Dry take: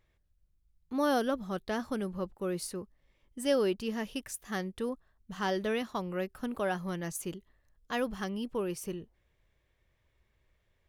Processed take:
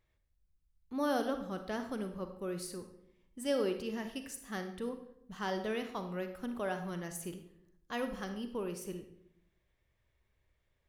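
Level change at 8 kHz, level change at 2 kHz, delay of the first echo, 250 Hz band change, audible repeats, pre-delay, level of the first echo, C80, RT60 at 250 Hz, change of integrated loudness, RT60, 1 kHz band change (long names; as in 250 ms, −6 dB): −4.5 dB, −4.5 dB, no echo audible, −4.0 dB, no echo audible, 35 ms, no echo audible, 12.0 dB, 0.95 s, −4.0 dB, 0.75 s, −4.0 dB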